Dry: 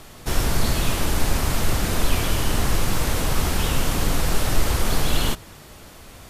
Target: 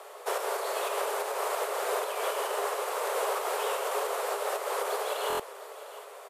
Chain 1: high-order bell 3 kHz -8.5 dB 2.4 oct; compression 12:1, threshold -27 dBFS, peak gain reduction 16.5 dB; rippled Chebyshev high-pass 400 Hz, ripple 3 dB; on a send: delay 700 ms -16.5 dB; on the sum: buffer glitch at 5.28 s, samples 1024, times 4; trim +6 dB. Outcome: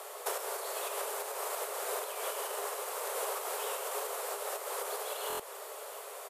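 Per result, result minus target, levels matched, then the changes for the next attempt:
compression: peak gain reduction +8 dB; 8 kHz band +6.0 dB
change: compression 12:1, threshold -18.5 dBFS, peak gain reduction 8.5 dB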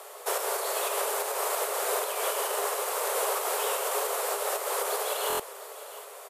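8 kHz band +5.5 dB
add after rippled Chebyshev high-pass: treble shelf 5.6 kHz -11 dB

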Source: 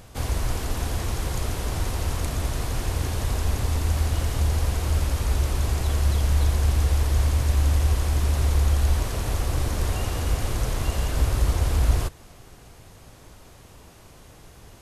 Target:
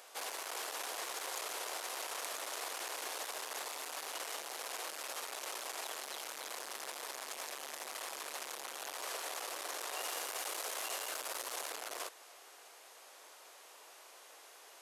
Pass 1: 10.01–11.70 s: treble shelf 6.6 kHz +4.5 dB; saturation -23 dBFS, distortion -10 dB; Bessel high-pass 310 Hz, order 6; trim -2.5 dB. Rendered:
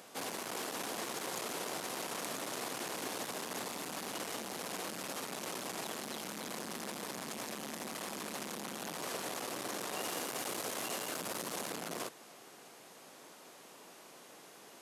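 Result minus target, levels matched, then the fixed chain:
250 Hz band +14.5 dB
10.01–11.70 s: treble shelf 6.6 kHz +4.5 dB; saturation -23 dBFS, distortion -10 dB; Bessel high-pass 680 Hz, order 6; trim -2.5 dB

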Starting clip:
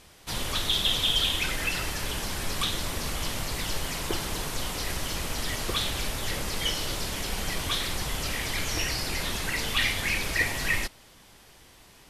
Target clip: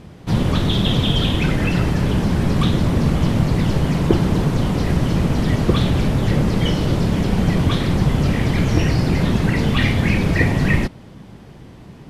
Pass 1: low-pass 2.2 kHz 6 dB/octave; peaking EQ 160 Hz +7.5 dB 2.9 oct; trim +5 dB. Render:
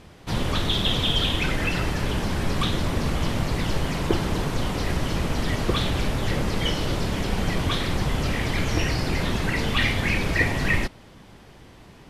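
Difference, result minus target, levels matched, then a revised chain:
125 Hz band -3.0 dB
low-pass 2.2 kHz 6 dB/octave; peaking EQ 160 Hz +19 dB 2.9 oct; trim +5 dB

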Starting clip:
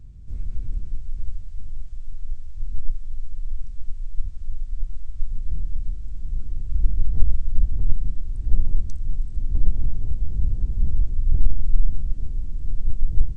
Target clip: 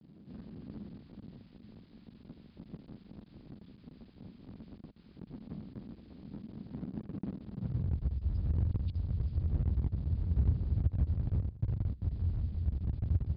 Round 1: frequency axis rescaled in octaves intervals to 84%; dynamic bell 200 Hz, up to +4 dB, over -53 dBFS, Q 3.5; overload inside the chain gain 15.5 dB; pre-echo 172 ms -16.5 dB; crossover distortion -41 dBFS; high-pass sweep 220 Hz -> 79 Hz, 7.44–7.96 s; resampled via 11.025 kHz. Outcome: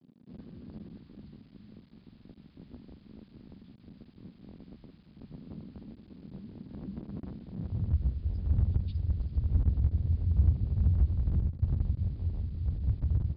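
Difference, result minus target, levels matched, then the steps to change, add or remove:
overload inside the chain: distortion -7 dB; crossover distortion: distortion +4 dB
change: overload inside the chain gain 24 dB; change: crossover distortion -47.5 dBFS

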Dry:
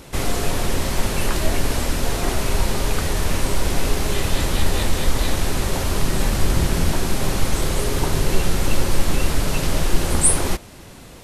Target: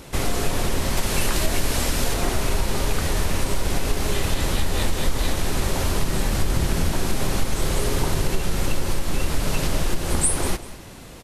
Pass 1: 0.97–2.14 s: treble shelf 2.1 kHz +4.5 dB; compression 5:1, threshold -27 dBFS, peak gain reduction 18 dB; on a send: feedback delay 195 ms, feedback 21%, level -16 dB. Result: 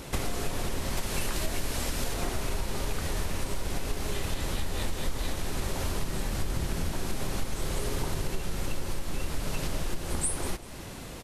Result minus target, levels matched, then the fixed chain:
compression: peak gain reduction +9 dB
0.97–2.14 s: treble shelf 2.1 kHz +4.5 dB; compression 5:1, threshold -15.5 dBFS, peak gain reduction 9 dB; on a send: feedback delay 195 ms, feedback 21%, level -16 dB

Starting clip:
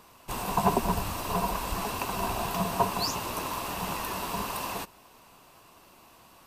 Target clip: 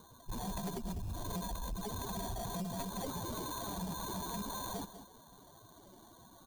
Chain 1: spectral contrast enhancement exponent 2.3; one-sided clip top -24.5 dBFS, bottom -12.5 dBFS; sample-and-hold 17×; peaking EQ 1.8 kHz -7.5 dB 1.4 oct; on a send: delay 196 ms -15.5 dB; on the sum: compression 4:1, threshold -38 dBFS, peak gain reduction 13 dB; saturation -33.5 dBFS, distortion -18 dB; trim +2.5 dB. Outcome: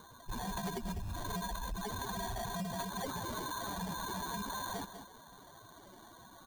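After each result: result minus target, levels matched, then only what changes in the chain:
2 kHz band +7.0 dB; one-sided clip: distortion -5 dB
change: peaking EQ 1.8 kHz -18.5 dB 1.4 oct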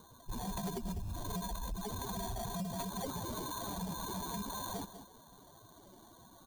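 one-sided clip: distortion -5 dB
change: one-sided clip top -33 dBFS, bottom -12.5 dBFS

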